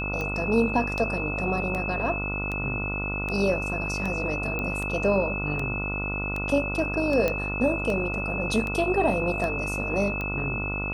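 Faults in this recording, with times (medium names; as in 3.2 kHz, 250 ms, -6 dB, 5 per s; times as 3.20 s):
buzz 50 Hz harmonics 29 -32 dBFS
tick 78 rpm -18 dBFS
whine 2.6 kHz -30 dBFS
4.59 s: pop -17 dBFS
7.28 s: pop -12 dBFS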